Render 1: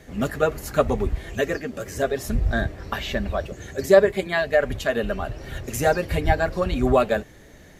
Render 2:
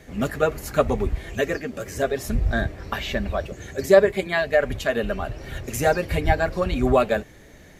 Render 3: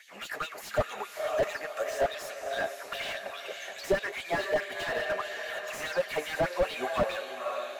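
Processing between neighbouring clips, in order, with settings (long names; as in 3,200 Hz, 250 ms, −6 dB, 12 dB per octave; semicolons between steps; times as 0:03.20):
parametric band 2,300 Hz +3 dB 0.25 octaves
auto-filter high-pass sine 4.8 Hz 600–3,600 Hz; feedback delay with all-pass diffusion 526 ms, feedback 45%, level −10 dB; slew-rate limiting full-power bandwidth 73 Hz; level −3 dB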